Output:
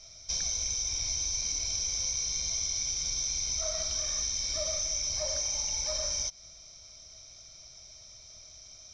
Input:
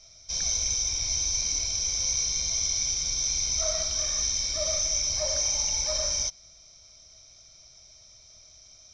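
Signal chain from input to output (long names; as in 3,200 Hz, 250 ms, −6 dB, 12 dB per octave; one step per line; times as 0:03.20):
downward compressor, threshold −31 dBFS, peak gain reduction 8 dB
level +2 dB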